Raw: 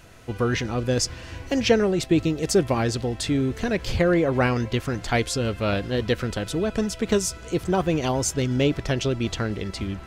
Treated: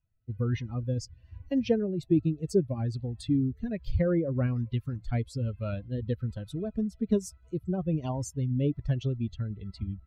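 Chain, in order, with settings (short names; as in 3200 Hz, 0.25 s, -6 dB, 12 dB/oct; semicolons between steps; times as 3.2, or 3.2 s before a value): per-bin expansion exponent 2; rotary speaker horn 1.2 Hz; in parallel at +1 dB: compressor, threshold -37 dBFS, peak gain reduction 18.5 dB; on the sum: tilt shelf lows +7.5 dB, about 670 Hz; gain -6.5 dB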